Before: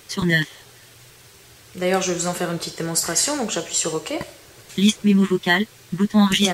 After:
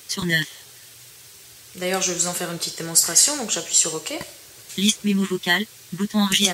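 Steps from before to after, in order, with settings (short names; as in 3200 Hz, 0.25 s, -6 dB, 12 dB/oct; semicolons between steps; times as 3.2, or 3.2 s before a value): HPF 46 Hz; high shelf 2800 Hz +11.5 dB; gain -5 dB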